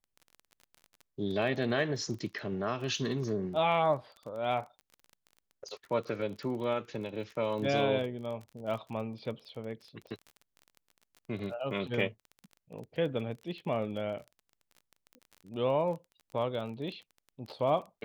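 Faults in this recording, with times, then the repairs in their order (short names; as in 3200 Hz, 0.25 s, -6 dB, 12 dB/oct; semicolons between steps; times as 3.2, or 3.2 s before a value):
crackle 22/s -40 dBFS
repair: de-click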